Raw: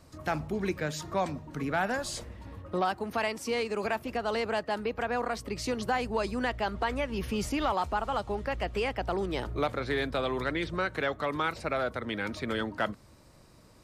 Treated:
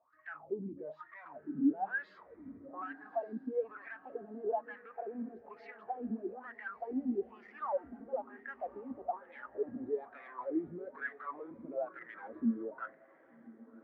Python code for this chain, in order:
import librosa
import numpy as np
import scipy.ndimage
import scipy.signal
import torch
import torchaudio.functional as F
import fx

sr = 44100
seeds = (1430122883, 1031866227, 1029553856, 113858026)

p1 = scipy.signal.sosfilt(scipy.signal.cheby1(2, 1.0, 3500.0, 'lowpass', fs=sr, output='sos'), x)
p2 = fx.over_compress(p1, sr, threshold_db=-35.0, ratio=-0.5)
p3 = p1 + (p2 * librosa.db_to_amplitude(0.0))
p4 = np.clip(p3, -10.0 ** (-29.0 / 20.0), 10.0 ** (-29.0 / 20.0))
p5 = fx.wah_lfo(p4, sr, hz=1.1, low_hz=240.0, high_hz=1900.0, q=6.2)
p6 = fx.echo_diffused(p5, sr, ms=1170, feedback_pct=43, wet_db=-11.5)
p7 = fx.spectral_expand(p6, sr, expansion=1.5)
y = p7 * librosa.db_to_amplitude(8.5)